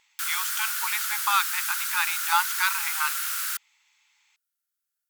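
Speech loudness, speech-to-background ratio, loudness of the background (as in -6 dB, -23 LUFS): -28.0 LUFS, -1.5 dB, -26.5 LUFS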